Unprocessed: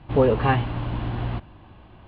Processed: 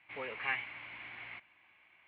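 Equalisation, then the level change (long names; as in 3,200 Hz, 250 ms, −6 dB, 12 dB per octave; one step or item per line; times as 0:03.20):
resonant band-pass 2,200 Hz, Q 10
+7.0 dB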